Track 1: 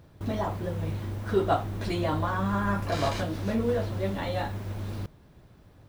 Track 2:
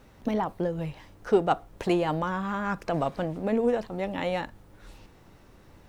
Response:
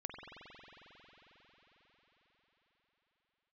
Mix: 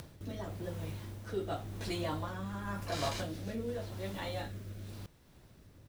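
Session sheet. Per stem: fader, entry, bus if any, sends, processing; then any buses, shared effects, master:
+2.5 dB, 0.00 s, no send, upward compression, threshold −42 dBFS; rotating-speaker cabinet horn 0.9 Hz; automatic ducking −11 dB, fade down 0.25 s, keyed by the second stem
−15.0 dB, 1.2 ms, no send, downward compressor, threshold −32 dBFS, peak gain reduction 15.5 dB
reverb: not used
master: high-shelf EQ 3,300 Hz +10 dB

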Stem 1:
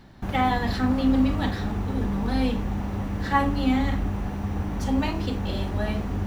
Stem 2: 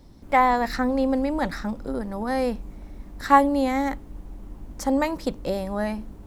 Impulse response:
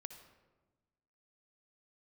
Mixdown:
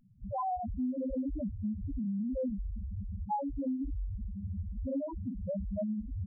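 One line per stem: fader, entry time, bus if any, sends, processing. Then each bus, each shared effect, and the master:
−2.0 dB, 0.00 s, send −13.5 dB, no processing
−6.0 dB, 0.7 ms, polarity flipped, no send, automatic gain control gain up to 8 dB; dead-zone distortion −39.5 dBFS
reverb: on, RT60 1.2 s, pre-delay 55 ms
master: parametric band 140 Hz +3.5 dB 0.41 octaves; spectral peaks only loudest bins 1; downward compressor 4 to 1, threshold −32 dBFS, peak gain reduction 10 dB

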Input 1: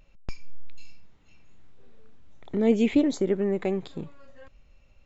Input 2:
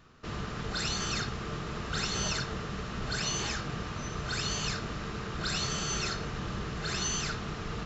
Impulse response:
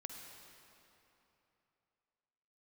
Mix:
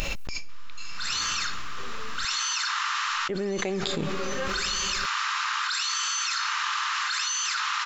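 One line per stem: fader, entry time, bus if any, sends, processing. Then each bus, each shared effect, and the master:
−8.0 dB, 0.00 s, muted 0:02.25–0:03.29, send −9.5 dB, high-shelf EQ 2,300 Hz +11 dB
−0.5 dB, 0.25 s, no send, Butterworth high-pass 920 Hz 72 dB per octave; automatic ducking −19 dB, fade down 0.30 s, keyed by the first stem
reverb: on, RT60 3.1 s, pre-delay 45 ms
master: low-shelf EQ 240 Hz −5 dB; envelope flattener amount 100%

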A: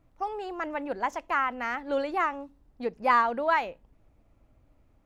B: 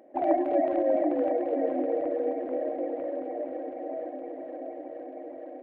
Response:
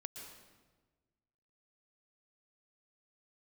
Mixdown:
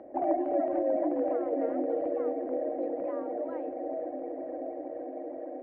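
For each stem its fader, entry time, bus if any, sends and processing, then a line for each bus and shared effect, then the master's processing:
−15.5 dB, 0.00 s, no send, high-pass filter 50 Hz; downward compressor, threshold −30 dBFS, peak gain reduction 12 dB
−2.0 dB, 0.00 s, no send, no processing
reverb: not used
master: Bessel low-pass filter 1,300 Hz, order 2; multiband upward and downward compressor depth 40%

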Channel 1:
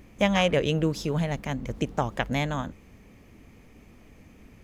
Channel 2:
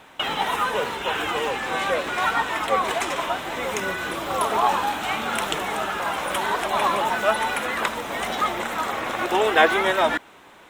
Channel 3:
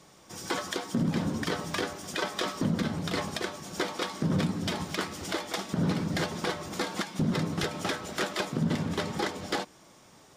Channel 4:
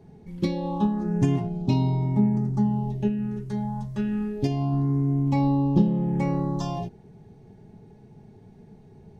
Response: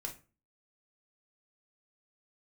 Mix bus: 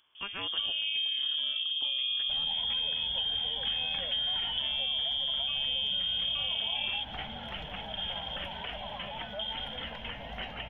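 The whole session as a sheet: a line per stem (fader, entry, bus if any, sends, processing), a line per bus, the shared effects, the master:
−12.5 dB, 0.00 s, bus A, no send, low-shelf EQ 330 Hz −11.5 dB; asymmetric clip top −17 dBFS
−13.0 dB, 2.10 s, no bus, no send, spectral tilt −4.5 dB per octave; downward compressor, threshold −23 dBFS, peak gain reduction 13 dB; phaser with its sweep stopped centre 1,800 Hz, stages 8
−10.0 dB, 2.20 s, bus A, no send, no processing
+0.5 dB, 0.15 s, bus A, no send, no processing
bus A: 0.0 dB, voice inversion scrambler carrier 3,400 Hz; brickwall limiter −18 dBFS, peak gain reduction 11 dB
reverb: not used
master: downward compressor, threshold −29 dBFS, peak gain reduction 7 dB

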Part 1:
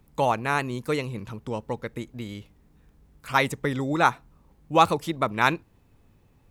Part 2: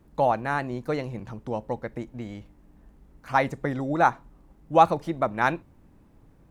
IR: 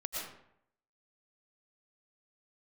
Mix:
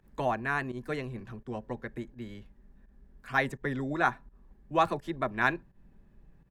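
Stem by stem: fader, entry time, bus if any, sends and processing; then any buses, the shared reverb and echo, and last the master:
0.0 dB, 0.00 s, no send, high-shelf EQ 5,100 Hz −7.5 dB; automatic ducking −9 dB, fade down 0.25 s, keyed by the second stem
−12.5 dB, 2.6 ms, no send, low-pass filter 1,000 Hz 12 dB per octave; low-shelf EQ 160 Hz +10.5 dB; comb filter 5.1 ms, depth 88%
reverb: not used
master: parametric band 1,700 Hz +12 dB 0.27 octaves; fake sidechain pumping 84 BPM, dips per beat 1, −15 dB, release 114 ms

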